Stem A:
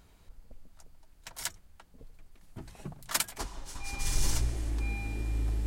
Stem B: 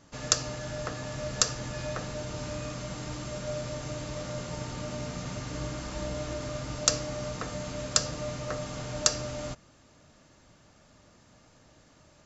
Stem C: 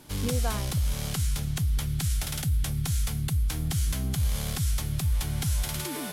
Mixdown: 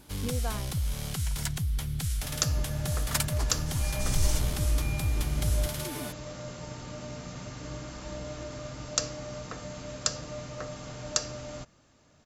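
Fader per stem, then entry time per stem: 0.0, -4.0, -3.5 dB; 0.00, 2.10, 0.00 s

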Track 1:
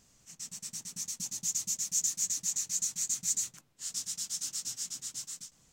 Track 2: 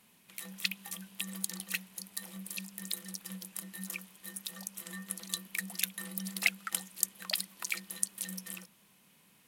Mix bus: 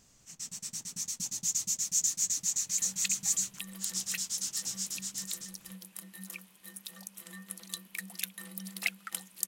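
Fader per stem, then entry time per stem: +1.5, -3.5 dB; 0.00, 2.40 s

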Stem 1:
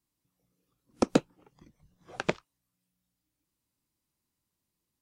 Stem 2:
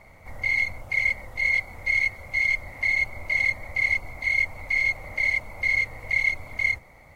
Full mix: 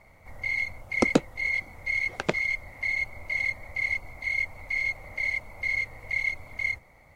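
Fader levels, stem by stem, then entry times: +2.0, -5.0 dB; 0.00, 0.00 s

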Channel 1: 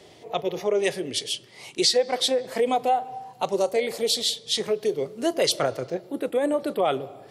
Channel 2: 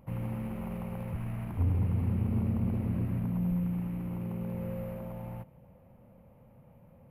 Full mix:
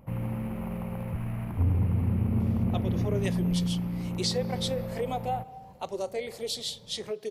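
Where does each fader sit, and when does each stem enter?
-9.5, +3.0 dB; 2.40, 0.00 s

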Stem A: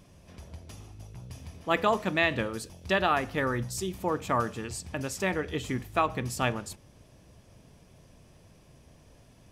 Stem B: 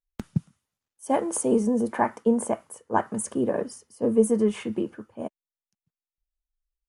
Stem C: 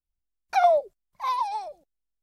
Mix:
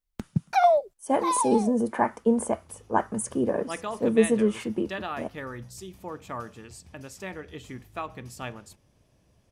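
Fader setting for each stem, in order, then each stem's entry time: -8.5, -0.5, 0.0 dB; 2.00, 0.00, 0.00 s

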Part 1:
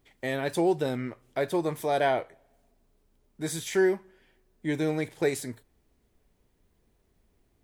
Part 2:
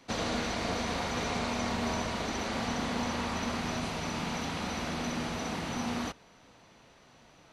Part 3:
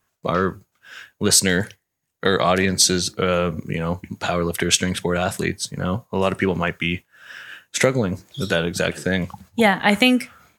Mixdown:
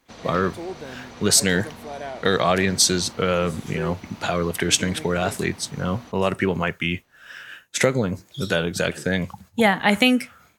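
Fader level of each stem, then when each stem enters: -9.0, -9.5, -1.5 dB; 0.00, 0.00, 0.00 s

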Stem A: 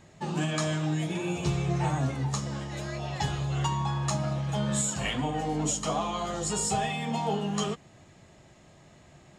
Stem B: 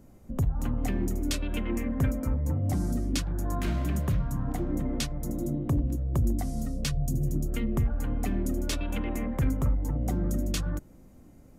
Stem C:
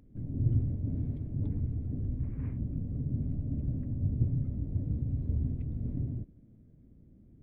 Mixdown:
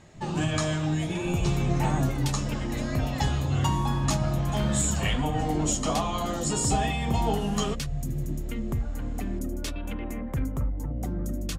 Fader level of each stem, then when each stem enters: +1.5, -2.5, -7.0 dB; 0.00, 0.95, 0.00 s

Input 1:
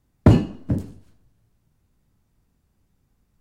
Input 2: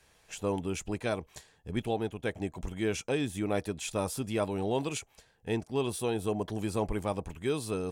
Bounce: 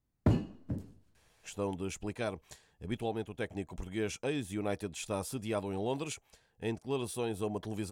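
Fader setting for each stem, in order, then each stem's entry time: -14.0, -4.0 dB; 0.00, 1.15 s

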